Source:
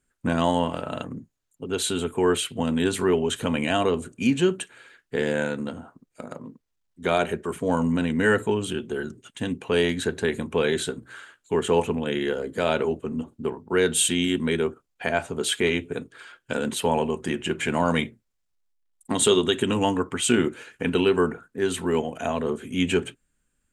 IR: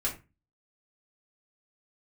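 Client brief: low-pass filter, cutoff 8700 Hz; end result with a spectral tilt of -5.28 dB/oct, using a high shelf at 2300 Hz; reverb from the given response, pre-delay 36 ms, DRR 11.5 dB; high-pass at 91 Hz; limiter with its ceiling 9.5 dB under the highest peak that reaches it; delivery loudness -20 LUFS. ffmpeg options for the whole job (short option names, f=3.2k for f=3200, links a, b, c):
-filter_complex "[0:a]highpass=91,lowpass=8.7k,highshelf=f=2.3k:g=-7,alimiter=limit=-17.5dB:level=0:latency=1,asplit=2[a][b];[1:a]atrim=start_sample=2205,adelay=36[c];[b][c]afir=irnorm=-1:irlink=0,volume=-17dB[d];[a][d]amix=inputs=2:normalize=0,volume=8.5dB"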